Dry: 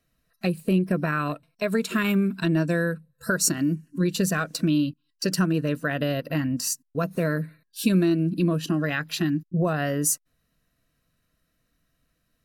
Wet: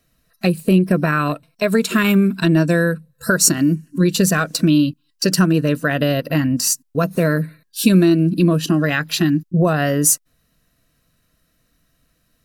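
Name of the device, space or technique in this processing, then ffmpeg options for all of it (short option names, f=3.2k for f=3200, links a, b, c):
exciter from parts: -filter_complex "[0:a]asplit=2[a][b];[b]highpass=2.9k,asoftclip=type=tanh:threshold=-28.5dB,volume=-9dB[c];[a][c]amix=inputs=2:normalize=0,volume=8dB"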